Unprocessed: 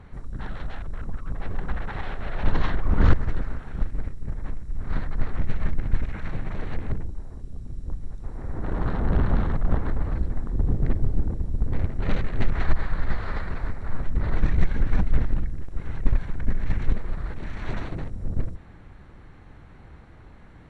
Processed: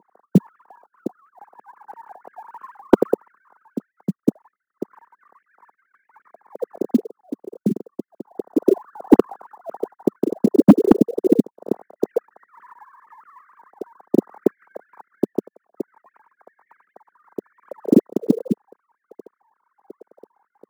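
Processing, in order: formants replaced by sine waves; Chebyshev band-pass 200–440 Hz, order 2; tilt EQ -3.5 dB/octave; short-mantissa float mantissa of 4-bit; trim -1 dB

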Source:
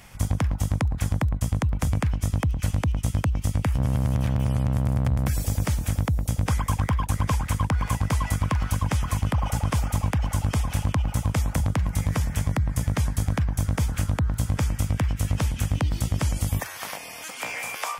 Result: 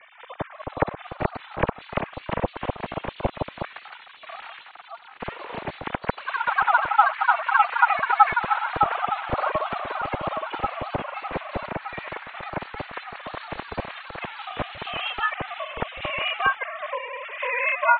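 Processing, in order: formants replaced by sine waves; high-pass 580 Hz 6 dB/octave; tilt shelf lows +8 dB, about 930 Hz; harmonic-percussive split percussive -10 dB; peaking EQ 2.1 kHz +5 dB 0.3 oct; feedback echo behind a high-pass 984 ms, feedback 76%, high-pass 1.8 kHz, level -16 dB; ever faster or slower copies 518 ms, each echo +2 st, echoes 2; ring modulator 240 Hz; trim +5 dB

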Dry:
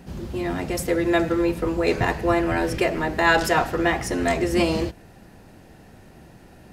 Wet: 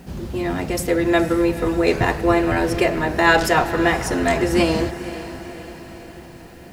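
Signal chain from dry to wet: added noise white -63 dBFS; on a send: echo that smears into a reverb 510 ms, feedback 56%, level -13.5 dB; on the sum: trim +3 dB

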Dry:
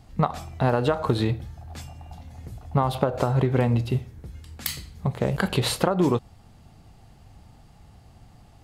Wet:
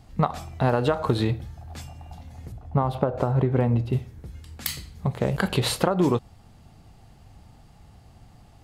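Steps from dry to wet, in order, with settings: 2.52–3.93 s: treble shelf 2.2 kHz -12 dB

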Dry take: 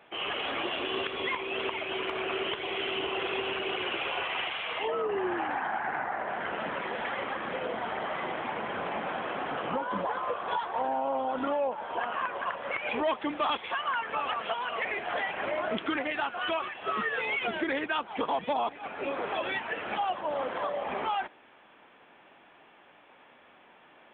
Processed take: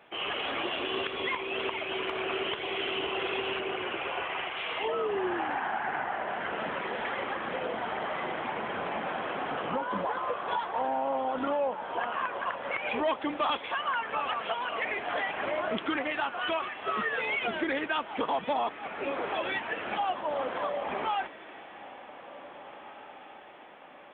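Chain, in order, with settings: 3.60–4.57 s: low-pass 2.4 kHz 12 dB/octave; echo that smears into a reverb 1905 ms, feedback 51%, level -16 dB

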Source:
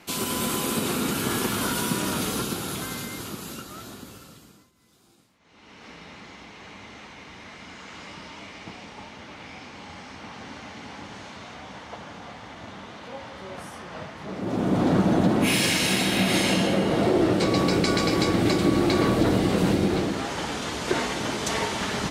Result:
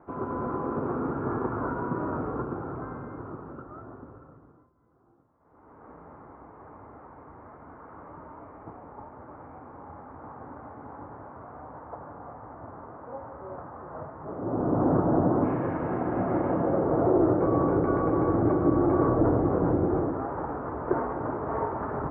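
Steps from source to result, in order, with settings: steep low-pass 1.3 kHz 36 dB/octave; peaking EQ 200 Hz -14 dB 0.3 oct

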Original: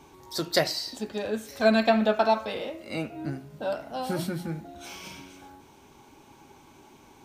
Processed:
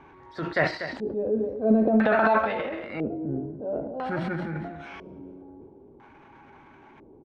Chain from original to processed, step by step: delay 242 ms -13.5 dB; transient shaper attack -6 dB, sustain +9 dB; LFO low-pass square 0.5 Hz 440–1800 Hz

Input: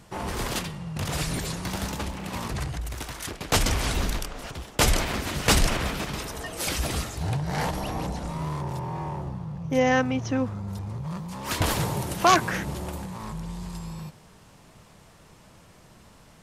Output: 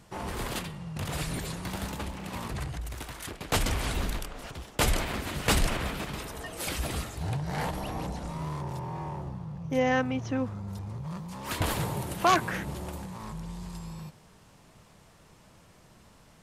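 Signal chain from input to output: dynamic bell 5.7 kHz, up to -5 dB, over -48 dBFS, Q 2; trim -4 dB

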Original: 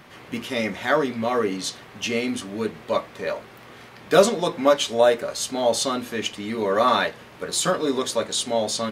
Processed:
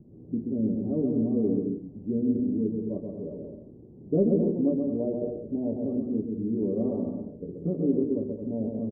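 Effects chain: inverse Chebyshev low-pass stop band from 1.6 kHz, stop band 70 dB; on a send: bouncing-ball echo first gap 130 ms, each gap 0.65×, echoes 5; on the sum: trim +1.5 dB

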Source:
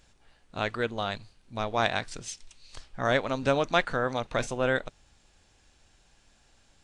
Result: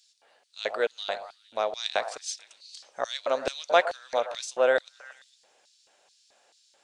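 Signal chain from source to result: repeats whose band climbs or falls 114 ms, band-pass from 640 Hz, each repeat 0.7 oct, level -11 dB; LFO high-pass square 2.3 Hz 550–4400 Hz

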